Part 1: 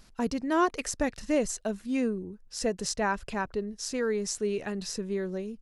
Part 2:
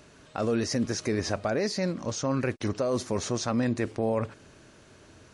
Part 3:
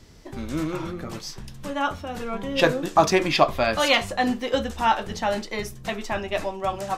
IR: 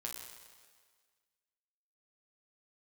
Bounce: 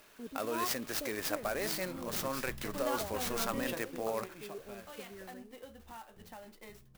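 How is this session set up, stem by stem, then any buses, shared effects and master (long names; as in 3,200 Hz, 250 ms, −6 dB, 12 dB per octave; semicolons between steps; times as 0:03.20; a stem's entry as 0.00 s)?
−20.0 dB, 0.00 s, no send, low-pass on a step sequencer 2.2 Hz 380–2,300 Hz
−0.5 dB, 0.00 s, no send, high-pass filter 1,200 Hz 6 dB per octave
0:01.91 −16 dB → 0:02.37 −7 dB → 0:03.55 −7 dB → 0:04.22 −19.5 dB, 1.10 s, no send, downward compressor 6 to 1, threshold −27 dBFS, peak gain reduction 15 dB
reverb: not used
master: converter with an unsteady clock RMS 0.039 ms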